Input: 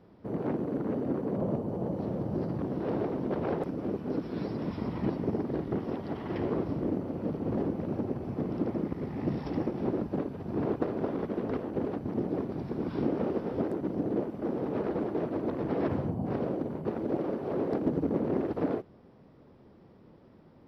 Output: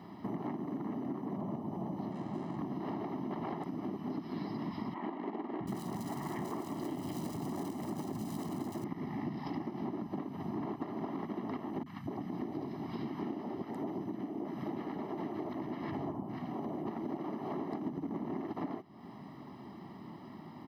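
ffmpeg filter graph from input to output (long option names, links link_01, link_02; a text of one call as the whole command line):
ffmpeg -i in.wav -filter_complex "[0:a]asettb=1/sr,asplit=3[link_01][link_02][link_03];[link_01]atrim=end=2.114[link_04];[link_02]atrim=start=2.11:end=2.58,asetpts=PTS-STARTPTS,afade=type=in:duration=0.004:curve=qsin,afade=type=out:start_time=0.466:duration=0.004:curve=qsin,lowpass=2200,lowshelf=frequency=150:gain=-7,aeval=exprs='sgn(val(0))*max(abs(val(0))-0.00335,0)':channel_layout=same[link_05];[link_03]atrim=start=2.576[link_06];[link_04][link_05]acrossfade=duration=0.004:curve1=hsin:curve2=qsin[link_07];[link_07][link_06]acrossfade=duration=0.004:curve1=qsin:curve2=hsin,asettb=1/sr,asplit=3[link_08][link_09][link_10];[link_08]atrim=end=4.944[link_11];[link_09]atrim=start=4.94:end=8.84,asetpts=PTS-STARTPTS,afade=type=in:duration=0.004:curve=qsin,afade=type=out:start_time=3.896:duration=0.004:curve=qsin,acrusher=bits=5:mode=log:mix=0:aa=0.000001,acrossover=split=250|2700[link_12][link_13][link_14];[link_12]adelay=660[link_15];[link_14]adelay=730[link_16];[link_15][link_13][link_16]amix=inputs=3:normalize=0,atrim=end_sample=171990[link_17];[link_10]atrim=start=8.836[link_18];[link_11][link_17]acrossfade=duration=0.004:curve1=hsin:curve2=qsin[link_19];[link_19][link_18]acrossfade=duration=0.004:curve1=qsin:curve2=hsin,asettb=1/sr,asplit=3[link_20][link_21][link_22];[link_20]atrim=end=11.834[link_23];[link_21]atrim=start=11.83:end=16.86,asetpts=PTS-STARTPTS,afade=type=in:duration=0.004:curve=qsin,afade=type=out:start_time=5.026:duration=0.004:curve=qsin,acrossover=split=200|1100[link_24][link_25][link_26];[link_26]adelay=30[link_27];[link_25]adelay=240[link_28];[link_24][link_28][link_27]amix=inputs=3:normalize=0,atrim=end_sample=221823,tremolo=f=1.4:d=0.39[link_29];[link_22]atrim=start=16.856[link_30];[link_23][link_29]acrossfade=duration=0.004:curve1=hsin:curve2=qsin[link_31];[link_31][link_30]acrossfade=duration=0.004:curve1=qsin:curve2=hsin,highpass=200,aecho=1:1:1:0.88,acompressor=threshold=-45dB:ratio=6,volume=8.5dB" out.wav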